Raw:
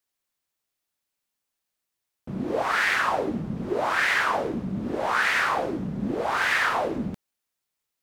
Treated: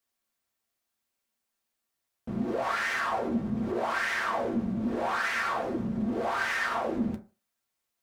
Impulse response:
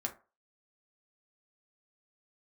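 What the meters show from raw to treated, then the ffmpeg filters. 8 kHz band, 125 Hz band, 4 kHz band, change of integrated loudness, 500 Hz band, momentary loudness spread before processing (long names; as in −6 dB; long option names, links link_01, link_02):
−6.0 dB, −3.5 dB, −7.5 dB, −5.0 dB, −4.0 dB, 10 LU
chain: -filter_complex "[0:a]asoftclip=type=tanh:threshold=-21dB,acompressor=threshold=-29dB:ratio=6[link_01];[1:a]atrim=start_sample=2205[link_02];[link_01][link_02]afir=irnorm=-1:irlink=0"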